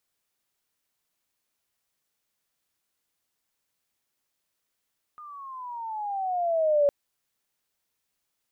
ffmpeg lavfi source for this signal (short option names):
-f lavfi -i "aevalsrc='pow(10,(-17+24*(t/1.71-1))/20)*sin(2*PI*1230*1.71/(-13.5*log(2)/12)*(exp(-13.5*log(2)/12*t/1.71)-1))':d=1.71:s=44100"